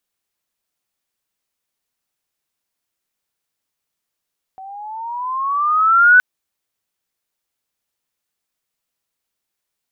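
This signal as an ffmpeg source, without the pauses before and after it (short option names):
-f lavfi -i "aevalsrc='pow(10,(-5+27*(t/1.62-1))/20)*sin(2*PI*754*1.62/(12*log(2)/12)*(exp(12*log(2)/12*t/1.62)-1))':d=1.62:s=44100"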